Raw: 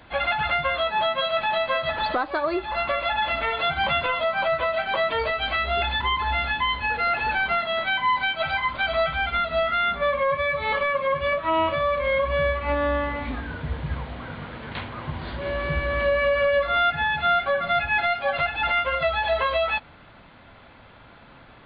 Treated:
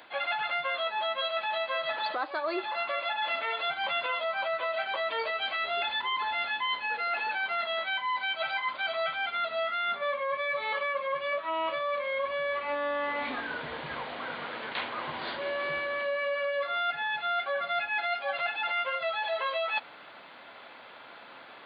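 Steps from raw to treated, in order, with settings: high-pass 410 Hz 12 dB/octave; treble shelf 4.4 kHz +6.5 dB; reverse; compression 6:1, threshold -30 dBFS, peak gain reduction 12 dB; reverse; trim +1.5 dB

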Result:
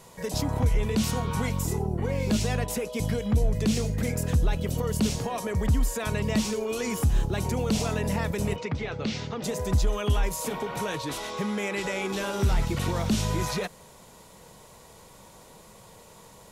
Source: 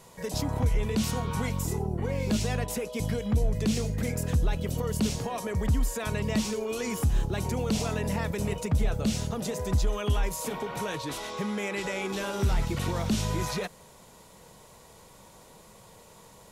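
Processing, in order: 8.56–9.44 s: cabinet simulation 140–5100 Hz, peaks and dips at 200 Hz -7 dB, 640 Hz -6 dB, 2.1 kHz +6 dB; trim +2 dB

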